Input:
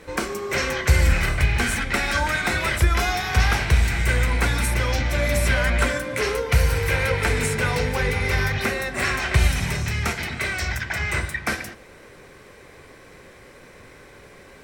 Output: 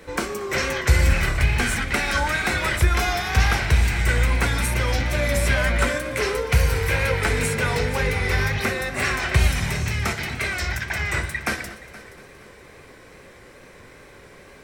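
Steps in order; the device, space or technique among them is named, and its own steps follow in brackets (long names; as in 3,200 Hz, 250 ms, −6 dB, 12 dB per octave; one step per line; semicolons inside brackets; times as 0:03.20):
multi-head tape echo (echo machine with several playback heads 236 ms, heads first and second, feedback 43%, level −20 dB; tape wow and flutter 47 cents)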